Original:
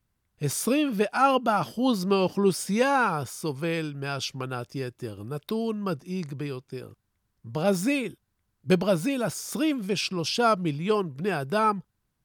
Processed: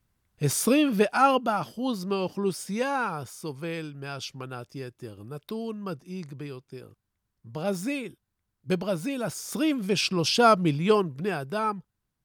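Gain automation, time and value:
1.1 s +2.5 dB
1.72 s -5 dB
8.91 s -5 dB
10.15 s +3.5 dB
10.9 s +3.5 dB
11.53 s -4.5 dB

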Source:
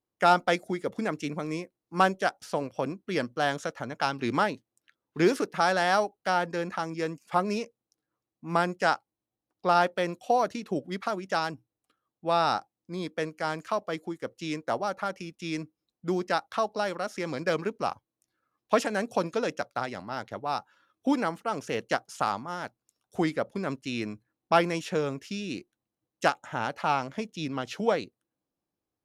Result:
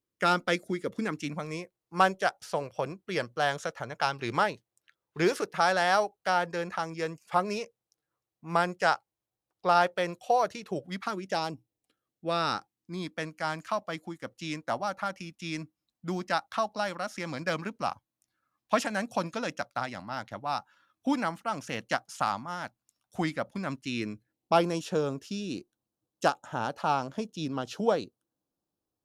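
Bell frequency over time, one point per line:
bell -12 dB 0.56 oct
1 s 770 Hz
1.55 s 260 Hz
10.81 s 260 Hz
11.45 s 1700 Hz
13.21 s 420 Hz
23.7 s 420 Hz
24.66 s 2100 Hz

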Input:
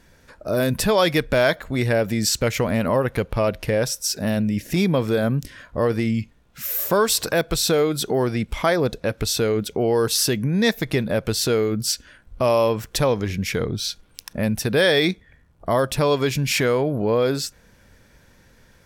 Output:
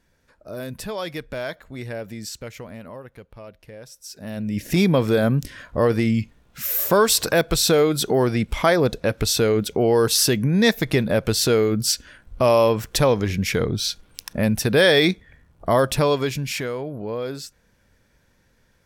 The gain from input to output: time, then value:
2.12 s -11.5 dB
3.17 s -20 dB
3.83 s -20 dB
4.33 s -9.5 dB
4.66 s +2 dB
15.93 s +2 dB
16.72 s -8.5 dB

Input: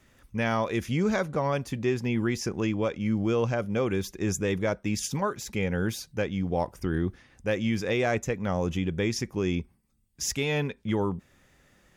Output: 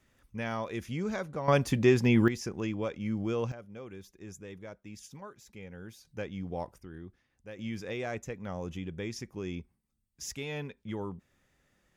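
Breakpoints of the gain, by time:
-8 dB
from 1.48 s +4 dB
from 2.28 s -6 dB
from 3.52 s -18 dB
from 6.05 s -9 dB
from 6.78 s -18 dB
from 7.59 s -10 dB

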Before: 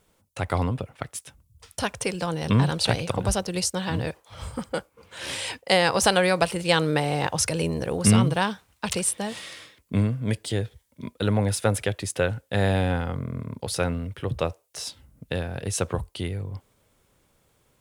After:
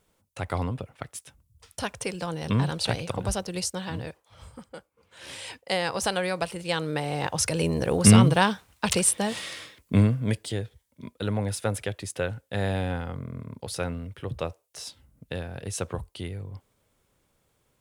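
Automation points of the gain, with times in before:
3.7 s -4 dB
4.75 s -14 dB
5.53 s -7 dB
6.81 s -7 dB
7.93 s +3 dB
10.05 s +3 dB
10.64 s -5 dB

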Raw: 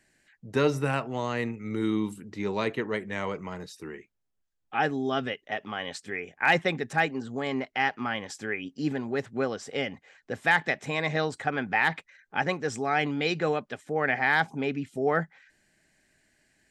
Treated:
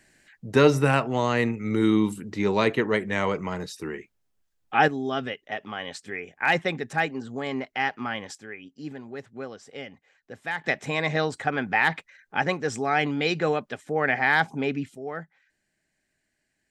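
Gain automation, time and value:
+6.5 dB
from 4.88 s 0 dB
from 8.35 s -8 dB
from 10.64 s +2.5 dB
from 14.95 s -9 dB

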